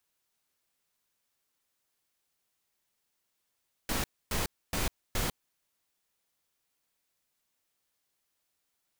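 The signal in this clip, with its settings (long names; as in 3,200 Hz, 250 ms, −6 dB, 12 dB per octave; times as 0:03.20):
noise bursts pink, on 0.15 s, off 0.27 s, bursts 4, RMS −30.5 dBFS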